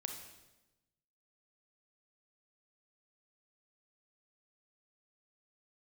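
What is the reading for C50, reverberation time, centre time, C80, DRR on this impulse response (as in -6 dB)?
5.5 dB, 1.0 s, 30 ms, 8.0 dB, 4.0 dB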